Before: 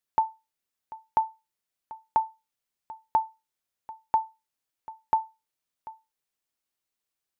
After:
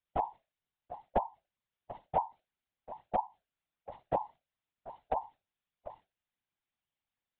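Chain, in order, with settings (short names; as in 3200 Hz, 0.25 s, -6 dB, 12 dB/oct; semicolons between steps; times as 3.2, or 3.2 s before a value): in parallel at -0.5 dB: compressor, threshold -36 dBFS, peak gain reduction 16 dB; on the sum: formant shift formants -5 st; LPC vocoder at 8 kHz whisper; whisperiser; gain -7 dB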